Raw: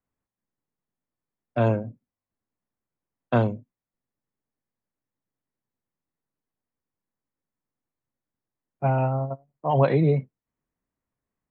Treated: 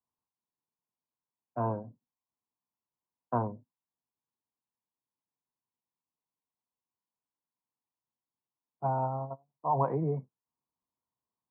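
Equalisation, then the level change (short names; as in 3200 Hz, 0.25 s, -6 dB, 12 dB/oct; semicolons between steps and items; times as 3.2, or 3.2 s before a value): HPF 76 Hz; ladder low-pass 1100 Hz, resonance 65%; notch 570 Hz, Q 12; 0.0 dB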